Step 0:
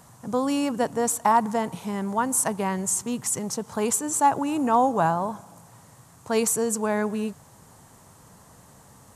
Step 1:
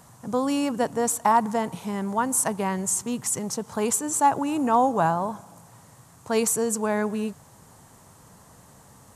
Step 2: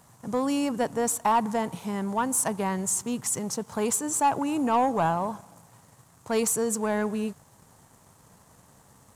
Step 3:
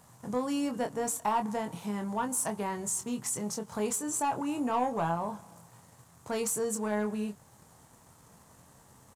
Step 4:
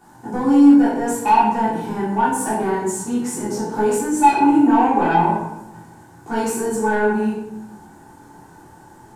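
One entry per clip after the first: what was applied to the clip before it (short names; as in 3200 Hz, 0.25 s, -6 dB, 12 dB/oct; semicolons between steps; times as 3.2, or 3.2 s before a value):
nothing audible
sample leveller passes 1; gain -5 dB
in parallel at +0.5 dB: compressor, threshold -36 dBFS, peak gain reduction 16 dB; on the sum: doubler 24 ms -6.5 dB; gain -8.5 dB
small resonant body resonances 330/840/1500 Hz, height 17 dB, ringing for 35 ms; soft clip -13.5 dBFS, distortion -14 dB; shoebox room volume 270 m³, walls mixed, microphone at 3.4 m; gain -4.5 dB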